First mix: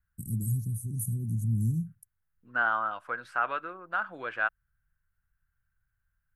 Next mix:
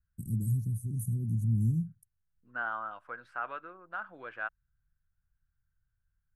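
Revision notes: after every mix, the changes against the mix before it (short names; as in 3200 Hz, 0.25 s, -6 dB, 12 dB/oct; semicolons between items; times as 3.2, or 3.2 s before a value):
second voice -7.0 dB; master: add high shelf 3700 Hz -9 dB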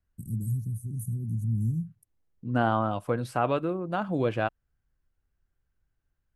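second voice: remove band-pass 1500 Hz, Q 3.9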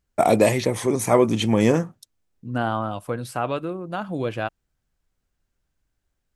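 first voice: remove inverse Chebyshev band-stop 690–2800 Hz, stop band 80 dB; master: add high shelf 3700 Hz +9 dB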